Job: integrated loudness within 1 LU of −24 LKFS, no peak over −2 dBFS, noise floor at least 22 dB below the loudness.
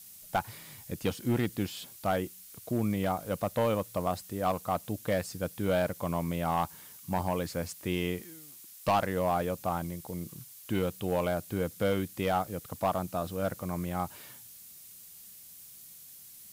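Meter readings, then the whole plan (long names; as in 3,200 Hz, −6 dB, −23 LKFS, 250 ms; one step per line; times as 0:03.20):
share of clipped samples 0.5%; peaks flattened at −20.5 dBFS; background noise floor −51 dBFS; target noise floor −55 dBFS; integrated loudness −32.5 LKFS; sample peak −20.5 dBFS; target loudness −24.0 LKFS
→ clipped peaks rebuilt −20.5 dBFS
broadband denoise 6 dB, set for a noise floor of −51 dBFS
level +8.5 dB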